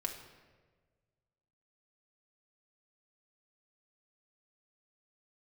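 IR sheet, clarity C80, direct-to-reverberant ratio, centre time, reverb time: 9.5 dB, 2.0 dB, 27 ms, 1.5 s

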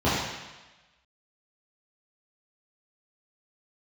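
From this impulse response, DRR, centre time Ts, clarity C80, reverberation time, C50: −11.0 dB, 85 ms, 2.0 dB, 1.1 s, −1.0 dB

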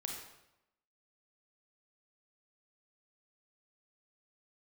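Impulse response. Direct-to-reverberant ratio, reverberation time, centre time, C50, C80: 0.5 dB, 0.90 s, 46 ms, 2.5 dB, 5.5 dB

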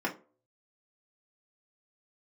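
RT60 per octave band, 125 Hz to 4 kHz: 0.50, 0.40, 0.45, 0.30, 0.25, 0.20 seconds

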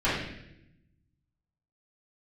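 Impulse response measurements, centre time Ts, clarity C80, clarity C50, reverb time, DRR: 62 ms, 4.5 dB, 0.5 dB, 0.85 s, −12.5 dB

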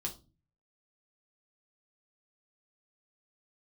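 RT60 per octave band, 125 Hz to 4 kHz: 0.75, 0.55, 0.35, 0.25, 0.20, 0.25 seconds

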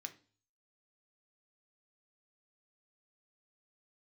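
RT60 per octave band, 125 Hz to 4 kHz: 0.70, 0.50, 0.40, 0.40, 0.35, 0.45 seconds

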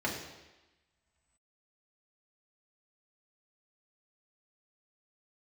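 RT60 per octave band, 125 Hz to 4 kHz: 1.2, 1.1, 1.0, 1.1, 1.2, 1.1 seconds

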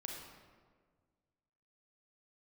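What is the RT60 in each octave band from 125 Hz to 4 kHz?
2.1, 2.0, 1.8, 1.5, 1.2, 0.95 seconds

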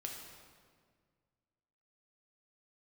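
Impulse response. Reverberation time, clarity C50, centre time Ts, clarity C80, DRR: 1.8 s, 3.0 dB, 64 ms, 4.5 dB, 0.0 dB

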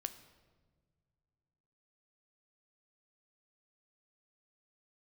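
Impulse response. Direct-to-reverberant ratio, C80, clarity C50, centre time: 9.5 dB, 14.5 dB, 13.0 dB, 10 ms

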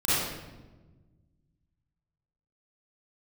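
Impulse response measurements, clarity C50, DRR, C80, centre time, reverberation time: −6.5 dB, −14.0 dB, −1.5 dB, 112 ms, 1.2 s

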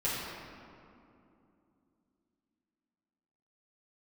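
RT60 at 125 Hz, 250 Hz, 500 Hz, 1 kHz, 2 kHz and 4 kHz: 3.3, 3.9, 2.9, 2.5, 1.9, 1.3 seconds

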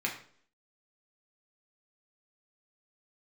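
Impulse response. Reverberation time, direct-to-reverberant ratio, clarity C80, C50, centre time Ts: 0.55 s, −2.0 dB, 12.0 dB, 8.5 dB, 22 ms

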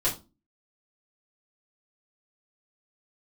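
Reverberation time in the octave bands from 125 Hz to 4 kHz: 0.40, 0.45, 0.30, 0.25, 0.20, 0.25 seconds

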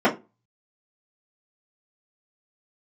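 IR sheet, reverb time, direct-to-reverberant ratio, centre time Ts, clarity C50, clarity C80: 0.25 s, −9.0 dB, 15 ms, 14.5 dB, 21.5 dB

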